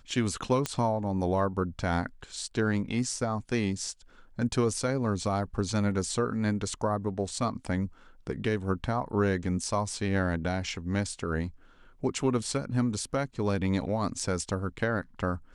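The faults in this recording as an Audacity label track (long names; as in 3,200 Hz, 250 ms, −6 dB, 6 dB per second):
0.660000	0.660000	click −13 dBFS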